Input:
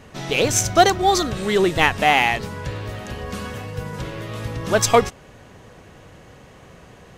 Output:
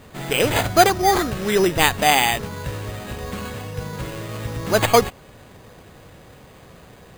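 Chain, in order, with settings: careless resampling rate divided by 8×, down none, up hold

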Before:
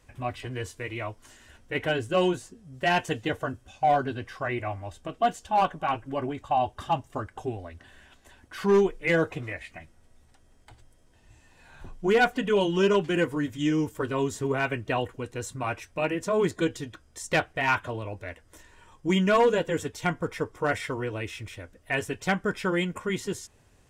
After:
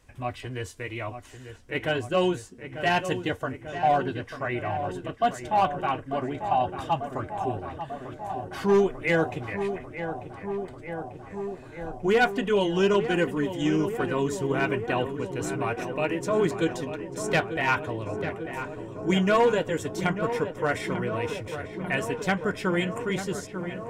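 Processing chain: darkening echo 0.893 s, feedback 81%, low-pass 2200 Hz, level -9.5 dB

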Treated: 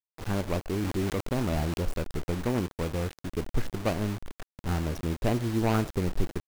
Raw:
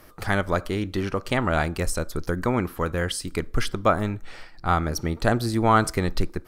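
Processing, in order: median filter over 41 samples; requantised 6-bit, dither none; 0.68–1.81 sustainer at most 22 dB/s; gain -3 dB

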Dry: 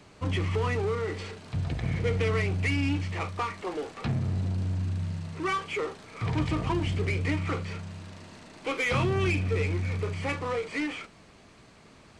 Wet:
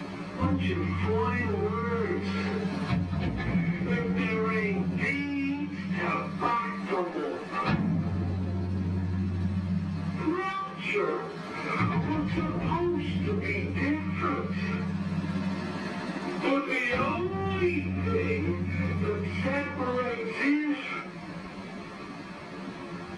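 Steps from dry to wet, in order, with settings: reverb RT60 0.15 s, pre-delay 3 ms, DRR 3 dB; compressor 6:1, threshold -31 dBFS, peak gain reduction 18.5 dB; plain phase-vocoder stretch 1.9×; gain +7.5 dB

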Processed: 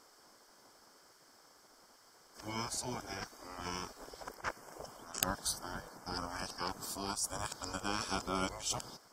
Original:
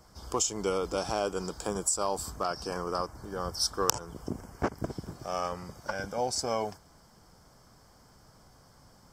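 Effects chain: whole clip reversed; spectral gate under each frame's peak -10 dB weak

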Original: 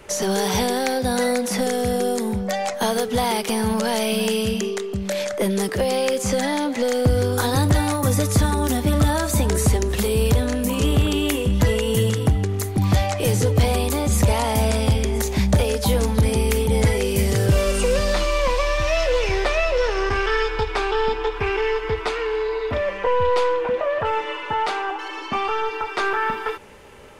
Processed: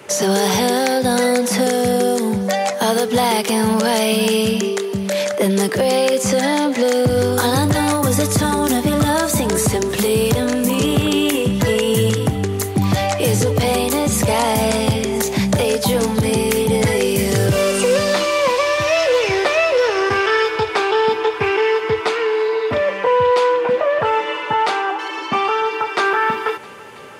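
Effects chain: HPF 110 Hz 24 dB/oct; on a send: thinning echo 0.329 s, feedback 84%, level -23 dB; on the sum: maximiser +11 dB; gain -5.5 dB

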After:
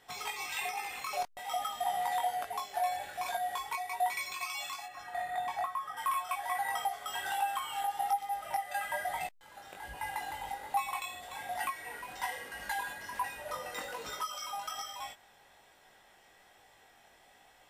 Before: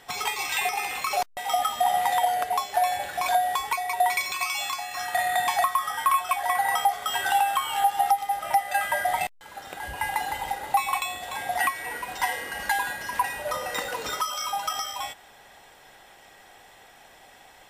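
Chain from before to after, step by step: 4.86–5.97 high shelf 2500 Hz -12 dB; chorus 1.2 Hz, delay 18.5 ms, depth 3.7 ms; gain -7 dB

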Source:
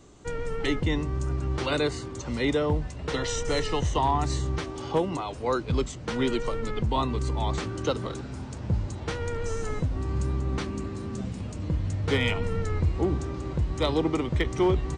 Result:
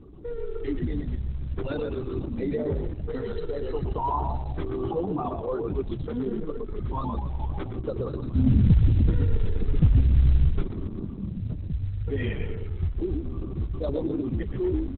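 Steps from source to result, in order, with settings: spectral contrast raised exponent 2.1; in parallel at 0 dB: negative-ratio compressor -37 dBFS, ratio -1; 8.35–10.49 on the sum: resonant low shelf 390 Hz +10.5 dB, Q 3; soft clip -5 dBFS, distortion -26 dB; short-mantissa float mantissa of 4-bit; on a send: frequency-shifting echo 0.122 s, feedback 46%, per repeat -48 Hz, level -4 dB; on the sum: gain -4 dB; Opus 6 kbps 48000 Hz

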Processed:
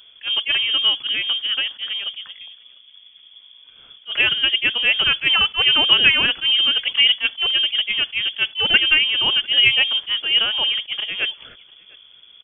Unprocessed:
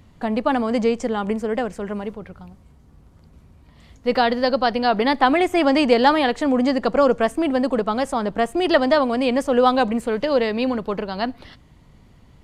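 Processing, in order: inverted band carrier 3400 Hz; outdoor echo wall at 120 m, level -24 dB; attack slew limiter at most 320 dB/s; gain +1 dB

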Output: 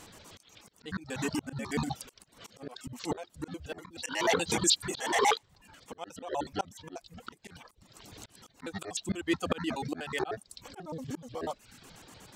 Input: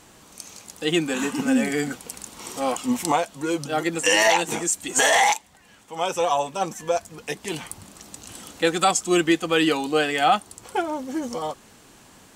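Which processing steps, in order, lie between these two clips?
trilling pitch shifter -11 st, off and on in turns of 61 ms; reverb removal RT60 0.57 s; auto swell 0.53 s

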